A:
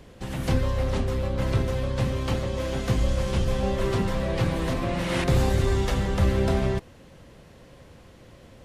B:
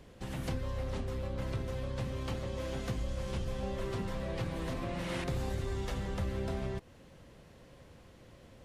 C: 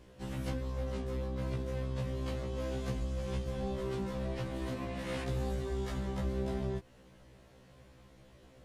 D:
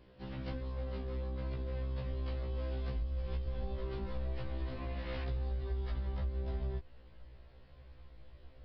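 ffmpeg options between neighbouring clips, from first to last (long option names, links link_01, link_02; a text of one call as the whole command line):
ffmpeg -i in.wav -af "acompressor=threshold=-28dB:ratio=2.5,volume=-6.5dB" out.wav
ffmpeg -i in.wav -af "afftfilt=real='re*1.73*eq(mod(b,3),0)':imag='im*1.73*eq(mod(b,3),0)':win_size=2048:overlap=0.75" out.wav
ffmpeg -i in.wav -af "aresample=11025,aresample=44100,asubboost=boost=9:cutoff=56,acompressor=threshold=-29dB:ratio=6,volume=-3.5dB" out.wav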